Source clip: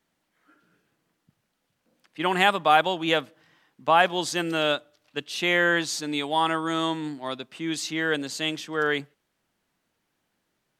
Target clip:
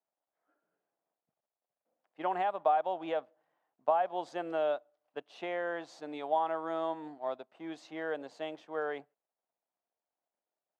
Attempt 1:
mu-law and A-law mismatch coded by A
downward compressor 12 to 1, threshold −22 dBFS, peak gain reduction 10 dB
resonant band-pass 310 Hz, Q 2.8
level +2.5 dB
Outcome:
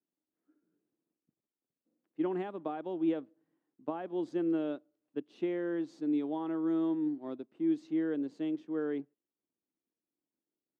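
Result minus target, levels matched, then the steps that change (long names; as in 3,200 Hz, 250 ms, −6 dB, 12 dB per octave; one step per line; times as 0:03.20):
250 Hz band +12.5 dB
change: resonant band-pass 680 Hz, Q 2.8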